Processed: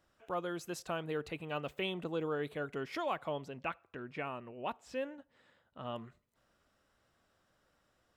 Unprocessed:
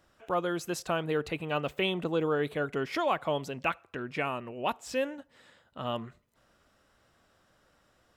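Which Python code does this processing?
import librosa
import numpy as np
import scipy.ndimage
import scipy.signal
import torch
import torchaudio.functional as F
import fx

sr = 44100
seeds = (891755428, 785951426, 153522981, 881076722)

y = fx.high_shelf(x, sr, hz=4800.0, db=-11.0, at=(3.29, 5.96))
y = y * 10.0 ** (-7.5 / 20.0)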